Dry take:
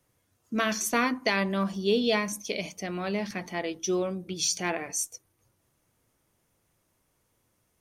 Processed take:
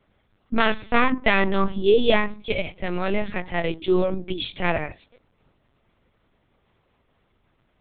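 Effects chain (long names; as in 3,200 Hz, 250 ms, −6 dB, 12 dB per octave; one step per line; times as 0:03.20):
linear-prediction vocoder at 8 kHz pitch kept
level +8 dB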